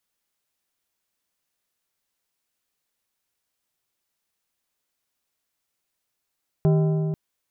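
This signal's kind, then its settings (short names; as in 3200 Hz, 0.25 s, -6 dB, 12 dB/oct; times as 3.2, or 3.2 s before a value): metal hit plate, length 0.49 s, lowest mode 157 Hz, modes 8, decay 3.31 s, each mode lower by 7 dB, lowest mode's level -15 dB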